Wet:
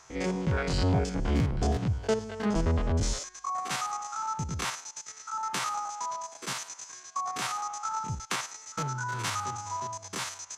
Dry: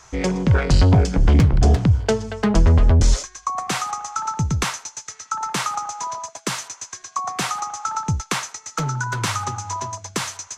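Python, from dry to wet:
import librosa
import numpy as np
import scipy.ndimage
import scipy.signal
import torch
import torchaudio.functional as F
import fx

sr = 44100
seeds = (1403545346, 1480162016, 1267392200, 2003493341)

y = fx.spec_steps(x, sr, hold_ms=50)
y = fx.low_shelf(y, sr, hz=110.0, db=-11.5)
y = y * librosa.db_to_amplitude(-5.5)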